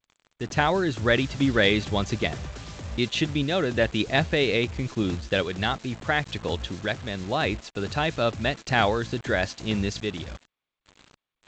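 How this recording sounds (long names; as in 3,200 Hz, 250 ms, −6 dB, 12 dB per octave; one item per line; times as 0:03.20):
sample-and-hold tremolo, depth 55%
a quantiser's noise floor 8 bits, dither none
G.722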